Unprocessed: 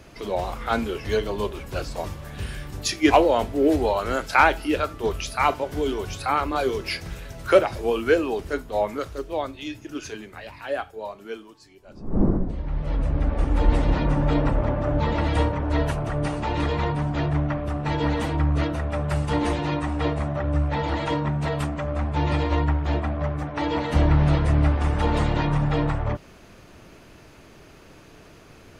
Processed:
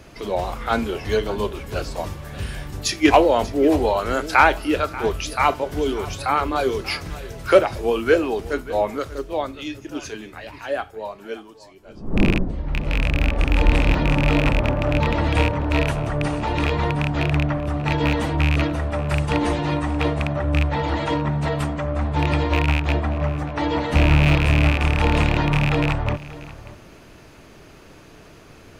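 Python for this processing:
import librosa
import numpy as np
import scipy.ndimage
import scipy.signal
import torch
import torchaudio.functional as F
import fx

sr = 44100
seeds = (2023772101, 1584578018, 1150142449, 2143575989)

y = fx.rattle_buzz(x, sr, strikes_db=-20.0, level_db=-13.0)
y = y + 10.0 ** (-17.5 / 20.0) * np.pad(y, (int(586 * sr / 1000.0), 0))[:len(y)]
y = y * 10.0 ** (2.5 / 20.0)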